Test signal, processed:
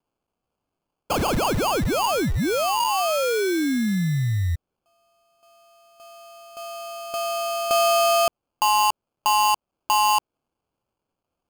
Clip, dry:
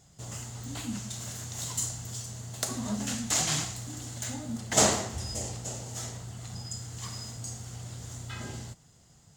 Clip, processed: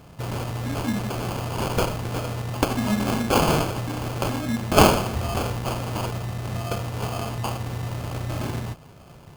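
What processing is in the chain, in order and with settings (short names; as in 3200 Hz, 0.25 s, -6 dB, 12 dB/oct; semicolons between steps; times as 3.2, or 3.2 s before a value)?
in parallel at -1.5 dB: compressor, threshold -39 dBFS; on the sum: sample-rate reducer 1900 Hz, jitter 0%; gain +7 dB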